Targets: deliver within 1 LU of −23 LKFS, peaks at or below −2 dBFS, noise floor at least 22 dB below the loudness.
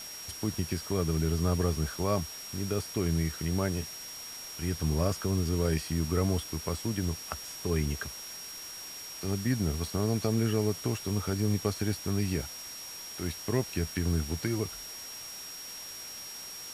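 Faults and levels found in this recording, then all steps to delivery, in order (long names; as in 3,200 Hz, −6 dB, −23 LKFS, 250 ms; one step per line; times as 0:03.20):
interfering tone 5,600 Hz; level of the tone −42 dBFS; background noise floor −43 dBFS; target noise floor −54 dBFS; integrated loudness −32.0 LKFS; sample peak −14.0 dBFS; target loudness −23.0 LKFS
→ notch filter 5,600 Hz, Q 30
broadband denoise 11 dB, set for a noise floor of −43 dBFS
level +9 dB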